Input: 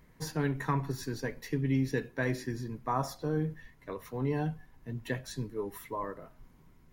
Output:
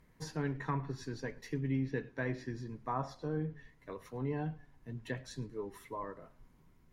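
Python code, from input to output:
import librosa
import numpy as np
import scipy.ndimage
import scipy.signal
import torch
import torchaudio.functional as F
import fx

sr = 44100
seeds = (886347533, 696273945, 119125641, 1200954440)

y = fx.env_lowpass_down(x, sr, base_hz=3000.0, full_db=-27.0)
y = fx.echo_warbled(y, sr, ms=108, feedback_pct=30, rate_hz=2.8, cents=145, wet_db=-23.5)
y = F.gain(torch.from_numpy(y), -5.0).numpy()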